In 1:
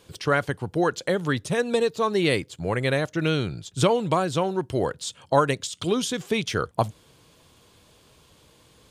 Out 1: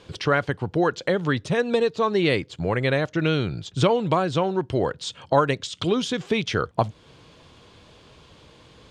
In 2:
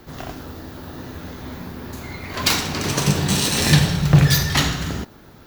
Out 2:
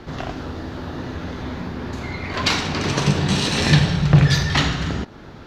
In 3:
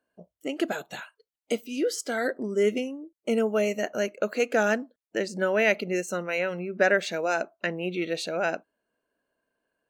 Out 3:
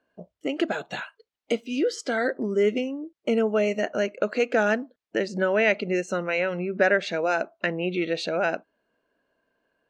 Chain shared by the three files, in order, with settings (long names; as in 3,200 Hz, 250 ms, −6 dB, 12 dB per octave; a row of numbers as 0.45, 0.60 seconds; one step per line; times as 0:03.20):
low-pass filter 4,600 Hz 12 dB per octave
in parallel at +2.5 dB: downward compressor, threshold −33 dBFS
on the sum: level −1 dB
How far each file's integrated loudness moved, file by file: +1.5, −2.5, +2.0 LU